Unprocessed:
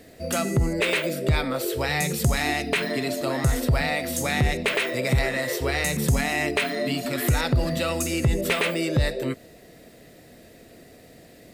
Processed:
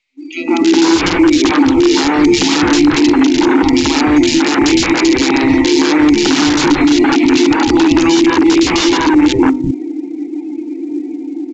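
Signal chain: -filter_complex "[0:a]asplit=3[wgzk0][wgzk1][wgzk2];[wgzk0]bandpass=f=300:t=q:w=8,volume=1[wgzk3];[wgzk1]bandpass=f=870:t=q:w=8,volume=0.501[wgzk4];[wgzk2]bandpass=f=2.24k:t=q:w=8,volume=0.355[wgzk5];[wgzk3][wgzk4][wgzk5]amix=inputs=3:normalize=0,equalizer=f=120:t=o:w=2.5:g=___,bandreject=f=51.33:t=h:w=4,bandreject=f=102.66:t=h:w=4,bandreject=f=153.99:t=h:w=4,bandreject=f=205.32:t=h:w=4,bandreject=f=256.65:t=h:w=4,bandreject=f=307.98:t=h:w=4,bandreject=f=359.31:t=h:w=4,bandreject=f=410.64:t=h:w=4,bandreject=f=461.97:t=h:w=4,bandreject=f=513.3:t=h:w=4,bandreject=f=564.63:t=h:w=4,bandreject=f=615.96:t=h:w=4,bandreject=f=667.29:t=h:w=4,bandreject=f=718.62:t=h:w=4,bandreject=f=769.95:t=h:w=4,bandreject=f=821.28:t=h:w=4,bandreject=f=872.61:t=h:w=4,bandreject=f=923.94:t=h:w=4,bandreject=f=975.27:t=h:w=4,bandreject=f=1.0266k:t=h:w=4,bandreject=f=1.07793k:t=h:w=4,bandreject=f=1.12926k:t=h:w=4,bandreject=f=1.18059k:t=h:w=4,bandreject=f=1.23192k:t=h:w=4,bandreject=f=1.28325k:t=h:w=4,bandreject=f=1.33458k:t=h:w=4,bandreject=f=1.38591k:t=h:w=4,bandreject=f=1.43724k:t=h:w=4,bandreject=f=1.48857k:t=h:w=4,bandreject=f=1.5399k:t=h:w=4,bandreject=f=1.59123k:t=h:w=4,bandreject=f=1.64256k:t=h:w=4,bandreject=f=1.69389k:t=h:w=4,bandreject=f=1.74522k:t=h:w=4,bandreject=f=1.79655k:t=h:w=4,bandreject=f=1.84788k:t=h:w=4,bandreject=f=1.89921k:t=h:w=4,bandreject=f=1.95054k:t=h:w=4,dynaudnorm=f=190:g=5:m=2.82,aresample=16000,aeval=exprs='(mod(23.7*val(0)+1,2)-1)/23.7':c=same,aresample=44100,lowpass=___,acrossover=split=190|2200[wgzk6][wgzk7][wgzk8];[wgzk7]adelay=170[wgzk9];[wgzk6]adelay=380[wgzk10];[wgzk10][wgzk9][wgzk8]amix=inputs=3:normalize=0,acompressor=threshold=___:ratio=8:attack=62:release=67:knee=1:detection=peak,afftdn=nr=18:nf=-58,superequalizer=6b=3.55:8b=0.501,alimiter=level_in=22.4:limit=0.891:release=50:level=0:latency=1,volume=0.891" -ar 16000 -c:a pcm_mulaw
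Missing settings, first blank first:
-10.5, 6.3k, 0.00708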